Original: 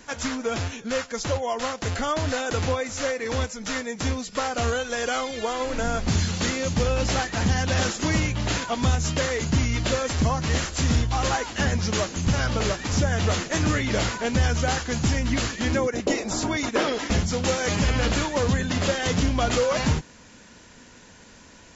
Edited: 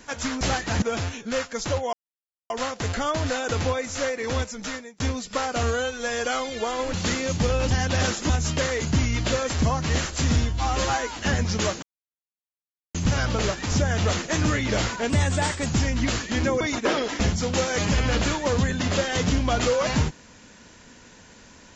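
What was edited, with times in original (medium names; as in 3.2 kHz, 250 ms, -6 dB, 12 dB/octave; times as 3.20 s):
1.52 s: insert silence 0.57 s
3.59–4.02 s: fade out
4.65–5.06 s: stretch 1.5×
5.75–6.30 s: delete
7.07–7.48 s: move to 0.41 s
8.07–8.89 s: delete
10.97–11.49 s: stretch 1.5×
12.16 s: insert silence 1.12 s
14.31–14.95 s: speed 114%
15.90–16.51 s: delete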